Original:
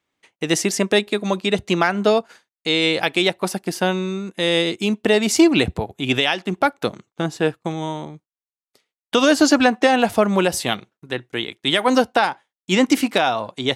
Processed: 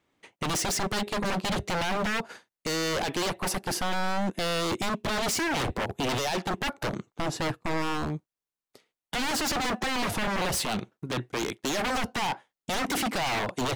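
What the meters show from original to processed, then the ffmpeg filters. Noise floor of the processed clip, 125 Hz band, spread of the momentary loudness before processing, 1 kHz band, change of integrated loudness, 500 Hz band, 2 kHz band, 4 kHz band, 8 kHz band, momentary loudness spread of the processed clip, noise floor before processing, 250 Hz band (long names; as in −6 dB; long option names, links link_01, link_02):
below −85 dBFS, −6.0 dB, 12 LU, −7.0 dB, −10.0 dB, −12.5 dB, −8.5 dB, −9.0 dB, −4.5 dB, 7 LU, below −85 dBFS, −12.5 dB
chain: -af "acontrast=29,alimiter=limit=-12dB:level=0:latency=1:release=10,tiltshelf=frequency=1200:gain=3.5,aeval=exprs='0.0891*(abs(mod(val(0)/0.0891+3,4)-2)-1)':channel_layout=same,volume=-2dB"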